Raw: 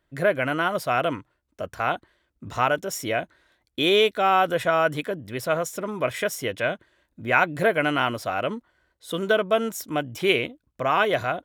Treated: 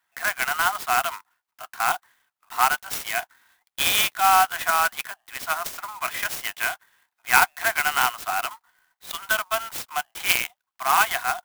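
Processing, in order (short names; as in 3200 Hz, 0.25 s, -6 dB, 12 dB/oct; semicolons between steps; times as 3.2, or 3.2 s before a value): steep high-pass 720 Hz 96 dB/oct; clock jitter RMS 0.044 ms; gain +3.5 dB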